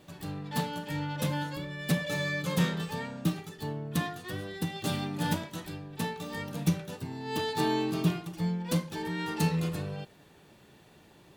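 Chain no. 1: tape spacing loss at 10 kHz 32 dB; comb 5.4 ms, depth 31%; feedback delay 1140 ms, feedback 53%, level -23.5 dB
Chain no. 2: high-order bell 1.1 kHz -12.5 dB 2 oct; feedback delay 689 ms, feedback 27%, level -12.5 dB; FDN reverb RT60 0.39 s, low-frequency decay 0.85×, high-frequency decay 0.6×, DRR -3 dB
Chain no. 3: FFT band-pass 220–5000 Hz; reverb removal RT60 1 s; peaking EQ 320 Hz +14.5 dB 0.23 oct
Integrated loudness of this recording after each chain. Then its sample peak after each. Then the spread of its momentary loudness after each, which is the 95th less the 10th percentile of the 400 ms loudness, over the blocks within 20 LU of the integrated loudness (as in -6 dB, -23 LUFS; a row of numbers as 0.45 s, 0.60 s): -33.0 LUFS, -28.0 LUFS, -32.5 LUFS; -14.0 dBFS, -10.5 dBFS, -12.0 dBFS; 13 LU, 12 LU, 12 LU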